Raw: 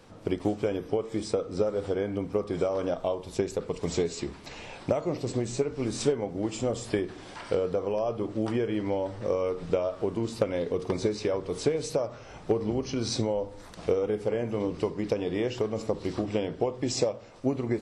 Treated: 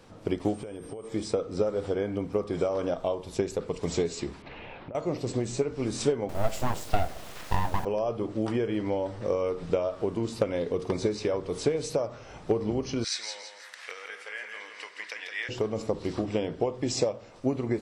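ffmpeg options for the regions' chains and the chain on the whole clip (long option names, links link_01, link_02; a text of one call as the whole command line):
ffmpeg -i in.wav -filter_complex "[0:a]asettb=1/sr,asplit=3[link_01][link_02][link_03];[link_01]atrim=end=0.544[link_04];[link_02]atrim=start=0.54:end=1.08,asetpts=PTS-STARTPTS,afade=type=in:duration=0.004:curve=qsin,afade=type=out:start_time=0.536:duration=0.004:curve=qsin,aeval=exprs='val(0)+0.00251*sin(2*PI*8600*n/s)':channel_layout=same,acompressor=threshold=-34dB:ratio=16:attack=3.2:release=140:knee=1:detection=peak[link_05];[link_03]atrim=start=1.076[link_06];[link_04][link_05]acrossfade=duration=0.004:curve1=hsin:curve2=qsin[link_07];[link_07][link_06]acrossfade=duration=0.004:curve1=qsin:curve2=hsin,asettb=1/sr,asplit=3[link_08][link_09][link_10];[link_08]atrim=end=4.424[link_11];[link_09]atrim=start=4.42:end=4.95,asetpts=PTS-STARTPTS,afade=type=in:duration=0.004:curve=qsin,afade=type=out:start_time=0.526:duration=0.004:curve=qsin,lowpass=frequency=3100:width=0.5412,lowpass=frequency=3100:width=1.3066,acompressor=threshold=-38dB:ratio=8:attack=3.2:release=140:knee=1:detection=peak[link_12];[link_10]atrim=start=4.946[link_13];[link_11][link_12]acrossfade=duration=0.004:curve1=hsin:curve2=qsin[link_14];[link_14][link_13]acrossfade=duration=0.004:curve1=qsin:curve2=hsin,asettb=1/sr,asplit=3[link_15][link_16][link_17];[link_15]atrim=end=6.294[link_18];[link_16]atrim=start=6.29:end=7.85,asetpts=PTS-STARTPTS,afade=type=in:duration=0.004:curve=qsin,afade=type=out:start_time=1.556:duration=0.004:curve=qsin,equalizer=frequency=320:width_type=o:width=0.63:gain=9,aeval=exprs='abs(val(0))':channel_layout=same,acrusher=bits=5:dc=4:mix=0:aa=0.000001[link_19];[link_17]atrim=start=7.846[link_20];[link_18][link_19]acrossfade=duration=0.004:curve1=hsin:curve2=qsin[link_21];[link_21][link_20]acrossfade=duration=0.004:curve1=qsin:curve2=hsin,asettb=1/sr,asplit=3[link_22][link_23][link_24];[link_22]atrim=end=13.044[link_25];[link_23]atrim=start=13.04:end=15.49,asetpts=PTS-STARTPTS,afade=type=in:duration=0.004:curve=qsin,afade=type=out:start_time=2.446:duration=0.004:curve=qsin,highpass=frequency=1800:width_type=q:width=3.5,aecho=1:1:166|332|498|664|830:0.501|0.195|0.0762|0.0297|0.0116,atrim=end_sample=108045[link_26];[link_24]atrim=start=15.486[link_27];[link_25][link_26]acrossfade=duration=0.004:curve1=hsin:curve2=qsin[link_28];[link_28][link_27]acrossfade=duration=0.004:curve1=qsin:curve2=hsin" out.wav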